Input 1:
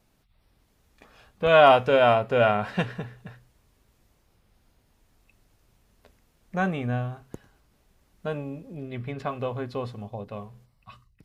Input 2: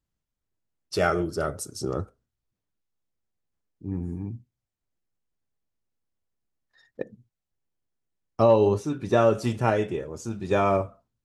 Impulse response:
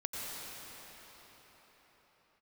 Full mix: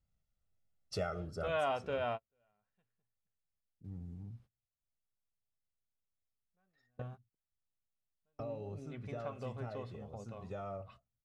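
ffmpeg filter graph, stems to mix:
-filter_complex "[0:a]volume=0.376[s0];[1:a]lowshelf=f=490:g=5.5,aecho=1:1:1.5:0.65,alimiter=limit=0.282:level=0:latency=1:release=367,volume=0.501,afade=t=out:st=1.05:d=0.8:silence=0.266073,asplit=2[s1][s2];[s2]apad=whole_len=496079[s3];[s0][s3]sidechaingate=range=0.00447:threshold=0.00158:ratio=16:detection=peak[s4];[s4][s1]amix=inputs=2:normalize=0,highshelf=f=11000:g=-12,acompressor=threshold=0.00355:ratio=1.5"

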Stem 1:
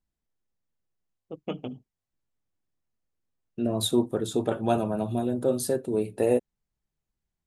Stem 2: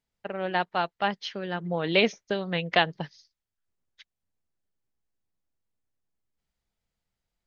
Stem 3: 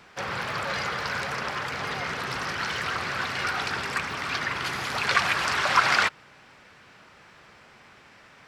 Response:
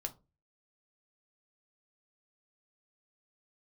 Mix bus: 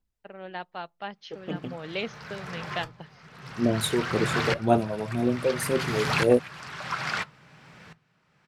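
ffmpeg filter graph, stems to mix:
-filter_complex "[0:a]aphaser=in_gain=1:out_gain=1:delay=2.3:decay=0.58:speed=1.9:type=sinusoidal,volume=0.708[s0];[1:a]volume=0.299,asplit=3[s1][s2][s3];[s2]volume=0.075[s4];[2:a]equalizer=f=150:w=1.9:g=14,aeval=exprs='val(0)*pow(10,-25*if(lt(mod(-0.59*n/s,1),2*abs(-0.59)/1000),1-mod(-0.59*n/s,1)/(2*abs(-0.59)/1000),(mod(-0.59*n/s,1)-2*abs(-0.59)/1000)/(1-2*abs(-0.59)/1000))/20)':c=same,adelay=1150,volume=1.06,asplit=2[s5][s6];[s6]volume=0.501[s7];[s3]apad=whole_len=424500[s8];[s5][s8]sidechaincompress=threshold=0.00141:ratio=8:attack=35:release=373[s9];[3:a]atrim=start_sample=2205[s10];[s4][s7]amix=inputs=2:normalize=0[s11];[s11][s10]afir=irnorm=-1:irlink=0[s12];[s0][s1][s9][s12]amix=inputs=4:normalize=0"

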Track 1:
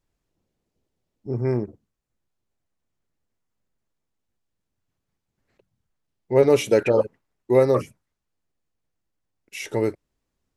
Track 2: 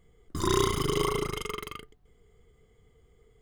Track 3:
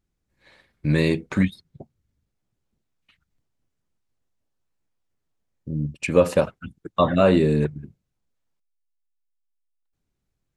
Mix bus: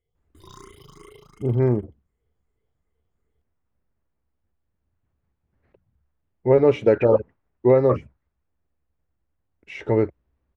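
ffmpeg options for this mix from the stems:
-filter_complex "[0:a]lowpass=1900,equalizer=f=69:w=2.2:g=14,alimiter=limit=0.355:level=0:latency=1:release=324,adelay=150,volume=1.41[s0];[1:a]asplit=2[s1][s2];[s2]afreqshift=2.7[s3];[s1][s3]amix=inputs=2:normalize=1,volume=0.15[s4];[s0][s4]amix=inputs=2:normalize=0"

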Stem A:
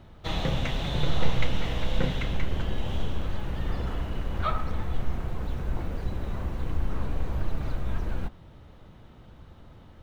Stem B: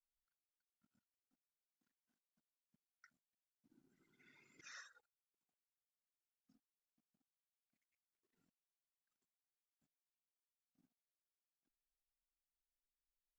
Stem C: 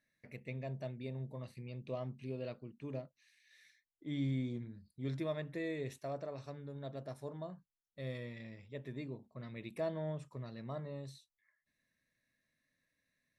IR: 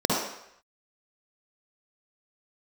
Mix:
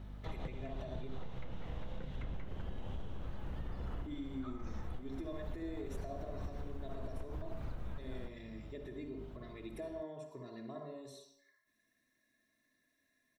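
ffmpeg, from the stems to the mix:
-filter_complex "[0:a]acrossover=split=110|1700[s0][s1][s2];[s0]acompressor=threshold=0.0501:ratio=4[s3];[s1]acompressor=threshold=0.0158:ratio=4[s4];[s2]acompressor=threshold=0.00178:ratio=4[s5];[s3][s4][s5]amix=inputs=3:normalize=0,aeval=exprs='val(0)+0.00794*(sin(2*PI*50*n/s)+sin(2*PI*2*50*n/s)/2+sin(2*PI*3*50*n/s)/3+sin(2*PI*4*50*n/s)/4+sin(2*PI*5*50*n/s)/5)':c=same,volume=0.531[s6];[1:a]volume=0.473[s7];[2:a]highshelf=f=5200:g=6,aecho=1:1:2.9:0.65,acompressor=threshold=0.00282:ratio=2.5,volume=0.75,asplit=3[s8][s9][s10];[s8]atrim=end=1.08,asetpts=PTS-STARTPTS,afade=t=out:st=1.076:d=0.004:c=hsin[s11];[s9]atrim=start=1.08:end=3.95,asetpts=PTS-STARTPTS,volume=0[s12];[s10]atrim=start=3.95,asetpts=PTS-STARTPTS,afade=t=in:d=0.004:c=hsin[s13];[s11][s12][s13]concat=n=3:v=0:a=1,asplit=3[s14][s15][s16];[s15]volume=0.188[s17];[s16]apad=whole_len=442004[s18];[s6][s18]sidechaincompress=threshold=0.00126:ratio=8:attack=21:release=125[s19];[3:a]atrim=start_sample=2205[s20];[s17][s20]afir=irnorm=-1:irlink=0[s21];[s19][s7][s14][s21]amix=inputs=4:normalize=0,acompressor=threshold=0.0158:ratio=10"

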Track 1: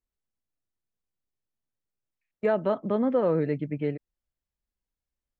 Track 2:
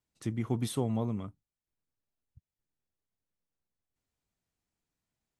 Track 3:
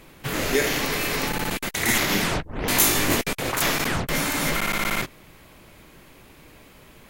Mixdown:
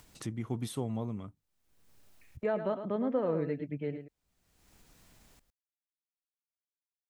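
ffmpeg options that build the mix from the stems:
-filter_complex "[0:a]volume=0.447,asplit=2[s0][s1];[s1]volume=0.335[s2];[1:a]volume=0.631[s3];[s2]aecho=0:1:108:1[s4];[s0][s3][s4]amix=inputs=3:normalize=0,acompressor=mode=upward:threshold=0.0141:ratio=2.5"

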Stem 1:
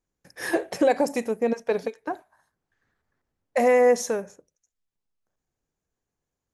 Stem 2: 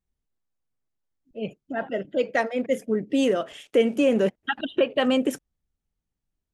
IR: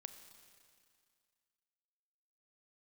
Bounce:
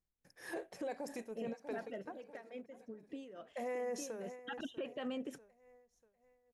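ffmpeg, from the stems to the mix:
-filter_complex "[0:a]volume=0.224,asplit=2[s0][s1];[s1]volume=0.141[s2];[1:a]highshelf=f=6800:g=-8.5,acompressor=threshold=0.0398:ratio=10,volume=1.68,afade=t=out:st=1.79:d=0.35:silence=0.421697,afade=t=in:st=4.23:d=0.29:silence=0.251189[s3];[s2]aecho=0:1:643|1286|1929|2572|3215|3858:1|0.42|0.176|0.0741|0.0311|0.0131[s4];[s0][s3][s4]amix=inputs=3:normalize=0,tremolo=f=3.5:d=0.59,alimiter=level_in=2.99:limit=0.0631:level=0:latency=1:release=11,volume=0.335"

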